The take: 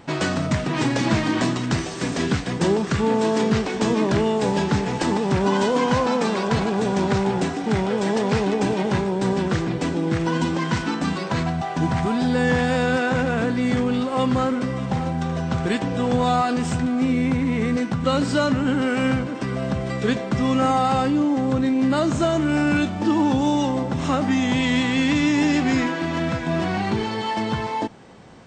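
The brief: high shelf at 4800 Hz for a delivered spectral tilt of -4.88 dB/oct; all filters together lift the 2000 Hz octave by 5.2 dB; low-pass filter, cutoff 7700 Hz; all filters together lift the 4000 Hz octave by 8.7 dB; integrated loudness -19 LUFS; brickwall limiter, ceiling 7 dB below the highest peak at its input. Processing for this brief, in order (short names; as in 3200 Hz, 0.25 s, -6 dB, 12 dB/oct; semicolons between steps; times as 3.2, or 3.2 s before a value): LPF 7700 Hz; bell 2000 Hz +4 dB; bell 4000 Hz +7.5 dB; high shelf 4800 Hz +5.5 dB; gain +3 dB; limiter -9 dBFS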